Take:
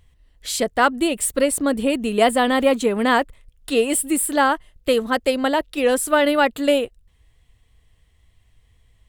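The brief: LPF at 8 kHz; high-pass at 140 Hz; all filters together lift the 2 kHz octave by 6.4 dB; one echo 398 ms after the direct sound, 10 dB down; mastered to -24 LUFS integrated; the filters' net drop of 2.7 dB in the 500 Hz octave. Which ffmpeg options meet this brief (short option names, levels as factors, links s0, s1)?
-af "highpass=140,lowpass=8000,equalizer=f=500:t=o:g=-3.5,equalizer=f=2000:t=o:g=8.5,aecho=1:1:398:0.316,volume=0.531"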